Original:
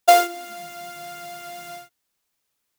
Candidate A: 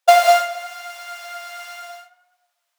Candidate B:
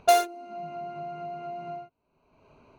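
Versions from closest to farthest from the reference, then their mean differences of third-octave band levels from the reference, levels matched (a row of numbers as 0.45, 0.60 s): A, B; 6.5, 9.5 dB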